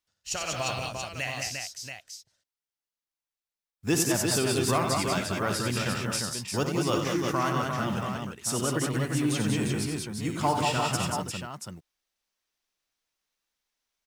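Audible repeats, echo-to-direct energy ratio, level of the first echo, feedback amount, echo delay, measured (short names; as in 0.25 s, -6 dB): 5, 1.0 dB, -10.5 dB, no steady repeat, 61 ms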